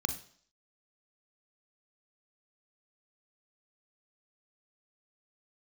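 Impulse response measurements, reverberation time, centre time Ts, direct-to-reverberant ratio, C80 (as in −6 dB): 0.55 s, 10 ms, 7.5 dB, 15.5 dB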